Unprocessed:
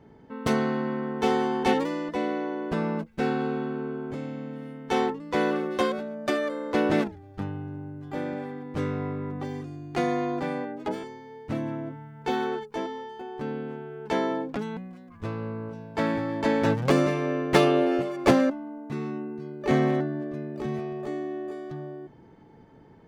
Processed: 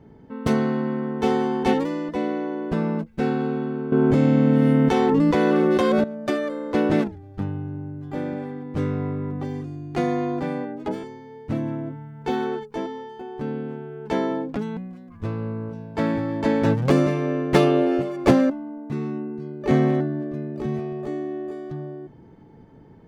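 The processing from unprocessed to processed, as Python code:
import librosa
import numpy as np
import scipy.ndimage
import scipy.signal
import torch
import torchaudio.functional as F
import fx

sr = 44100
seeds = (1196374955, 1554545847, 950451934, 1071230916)

y = fx.env_flatten(x, sr, amount_pct=100, at=(3.92, 6.04))
y = fx.low_shelf(y, sr, hz=410.0, db=7.5)
y = y * 10.0 ** (-1.0 / 20.0)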